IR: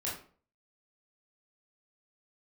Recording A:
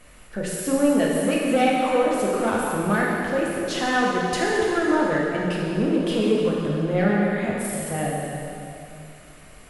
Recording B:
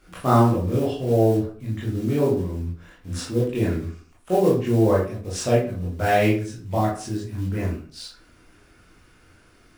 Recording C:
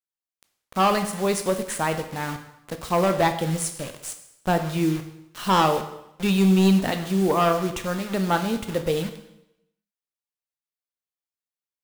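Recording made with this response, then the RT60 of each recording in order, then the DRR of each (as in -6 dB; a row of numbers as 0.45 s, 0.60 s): B; 2.7 s, 0.45 s, 0.85 s; -4.5 dB, -6.5 dB, 7.0 dB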